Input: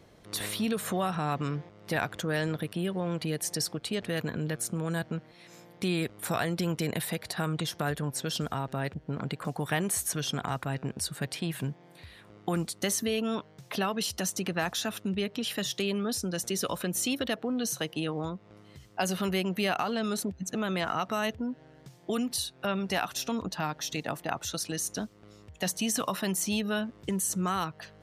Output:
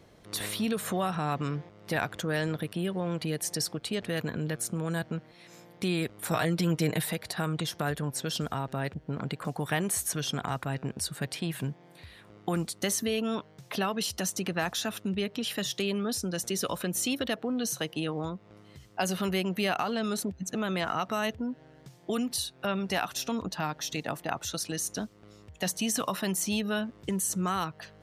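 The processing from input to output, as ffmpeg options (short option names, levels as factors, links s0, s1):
-filter_complex "[0:a]asettb=1/sr,asplit=3[s0][s1][s2];[s0]atrim=end=6.314[s3];[s1]atrim=start=6.31:end=7.13,asetpts=PTS-STARTPTS,afade=t=in:d=0.004:c=qsin,afade=t=out:st=0.816:d=0.004:c=qsin,aecho=1:1:6.5:0.65,atrim=end_sample=36162[s4];[s2]atrim=start=7.126[s5];[s3][s4]acrossfade=d=0.004:c1=hsin:c2=qsin[s6];[s6][s5]acrossfade=d=0.004:c1=qsin:c2=hsin"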